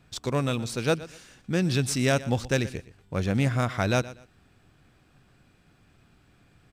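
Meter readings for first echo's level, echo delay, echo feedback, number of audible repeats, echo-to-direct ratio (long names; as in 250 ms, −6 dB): −17.5 dB, 121 ms, 26%, 2, −17.0 dB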